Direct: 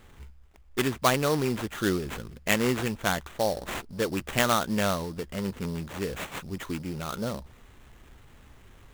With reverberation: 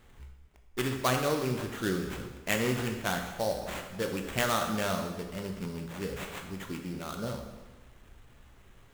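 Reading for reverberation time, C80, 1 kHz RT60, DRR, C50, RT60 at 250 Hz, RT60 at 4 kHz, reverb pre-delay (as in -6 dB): 1.2 s, 7.5 dB, 1.2 s, 3.0 dB, 6.0 dB, 1.2 s, 1.1 s, 7 ms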